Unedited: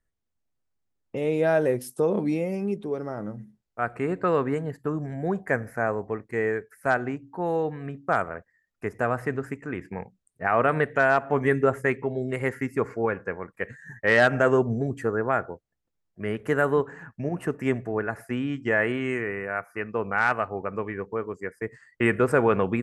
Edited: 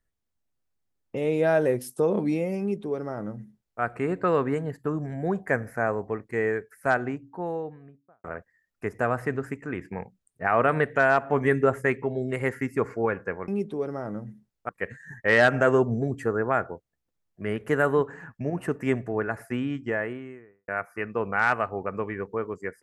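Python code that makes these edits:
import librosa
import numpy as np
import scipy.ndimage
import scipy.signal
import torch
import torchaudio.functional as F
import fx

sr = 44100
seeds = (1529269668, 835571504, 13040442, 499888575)

y = fx.studio_fade_out(x, sr, start_s=6.94, length_s=1.3)
y = fx.studio_fade_out(y, sr, start_s=18.27, length_s=1.2)
y = fx.edit(y, sr, fx.duplicate(start_s=2.6, length_s=1.21, to_s=13.48), tone=tone)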